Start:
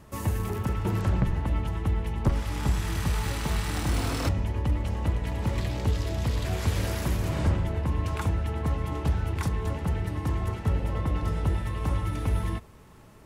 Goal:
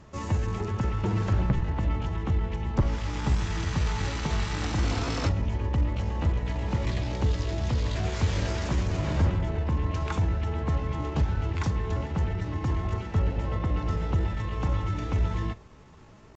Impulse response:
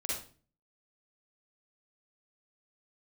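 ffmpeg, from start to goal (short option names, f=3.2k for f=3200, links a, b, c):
-filter_complex "[0:a]asplit=2[a][b];[1:a]atrim=start_sample=2205,asetrate=70560,aresample=44100[c];[b][c]afir=irnorm=-1:irlink=0,volume=-19dB[d];[a][d]amix=inputs=2:normalize=0,aresample=16000,aresample=44100,atempo=0.81"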